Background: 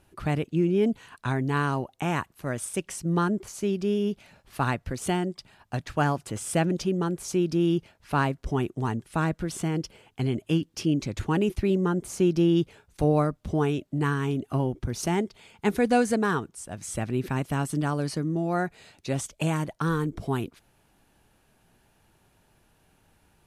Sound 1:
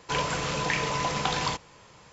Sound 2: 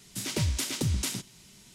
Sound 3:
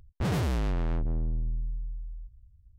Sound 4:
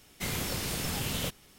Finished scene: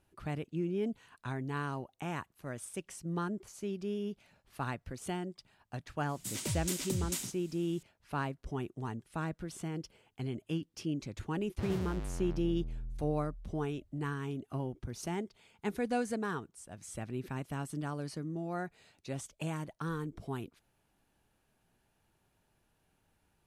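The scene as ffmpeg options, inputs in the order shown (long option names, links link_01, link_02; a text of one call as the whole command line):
ffmpeg -i bed.wav -i cue0.wav -i cue1.wav -i cue2.wav -filter_complex "[0:a]volume=-11dB[link_01];[2:a]aexciter=amount=1.9:drive=5.3:freq=7000,atrim=end=1.74,asetpts=PTS-STARTPTS,volume=-8dB,afade=type=in:duration=0.004:curve=hsin,afade=type=out:start_time=1.736:duration=0.004:curve=hsin,adelay=6090[link_02];[3:a]atrim=end=2.78,asetpts=PTS-STARTPTS,volume=-11dB,afade=type=in:duration=0.004:curve=hsin,afade=type=out:start_time=2.776:duration=0.004:curve=hsin,adelay=501858S[link_03];[link_01][link_02][link_03]amix=inputs=3:normalize=0" out.wav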